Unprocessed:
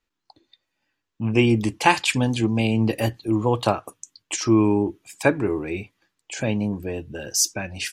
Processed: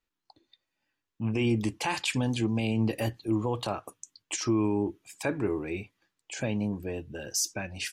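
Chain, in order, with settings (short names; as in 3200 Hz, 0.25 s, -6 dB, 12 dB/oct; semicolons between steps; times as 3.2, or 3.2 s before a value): limiter -12.5 dBFS, peak gain reduction 10 dB; gain -5.5 dB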